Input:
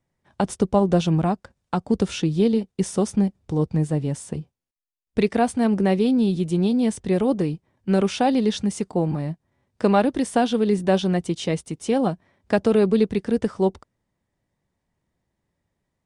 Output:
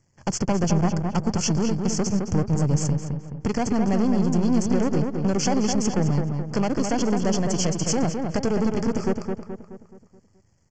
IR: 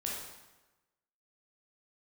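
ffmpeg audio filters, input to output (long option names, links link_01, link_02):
-filter_complex "[0:a]aeval=exprs='if(lt(val(0),0),0.251*val(0),val(0))':channel_layout=same,equalizer=frequency=110:width_type=o:width=1.3:gain=9,acrossover=split=4800[link_01][link_02];[link_01]acontrast=66[link_03];[link_02]alimiter=level_in=9dB:limit=-24dB:level=0:latency=1:release=436,volume=-9dB[link_04];[link_03][link_04]amix=inputs=2:normalize=0,acompressor=threshold=-22dB:ratio=6,aexciter=amount=10.6:drive=4.3:freq=5000,asoftclip=type=hard:threshold=-21dB,atempo=1.5,asplit=2[link_05][link_06];[link_06]adelay=213,lowpass=frequency=2500:poles=1,volume=-4.5dB,asplit=2[link_07][link_08];[link_08]adelay=213,lowpass=frequency=2500:poles=1,volume=0.49,asplit=2[link_09][link_10];[link_10]adelay=213,lowpass=frequency=2500:poles=1,volume=0.49,asplit=2[link_11][link_12];[link_12]adelay=213,lowpass=frequency=2500:poles=1,volume=0.49,asplit=2[link_13][link_14];[link_14]adelay=213,lowpass=frequency=2500:poles=1,volume=0.49,asplit=2[link_15][link_16];[link_16]adelay=213,lowpass=frequency=2500:poles=1,volume=0.49[link_17];[link_07][link_09][link_11][link_13][link_15][link_17]amix=inputs=6:normalize=0[link_18];[link_05][link_18]amix=inputs=2:normalize=0,aresample=16000,aresample=44100,asuperstop=centerf=3800:order=12:qfactor=4.9,volume=3.5dB"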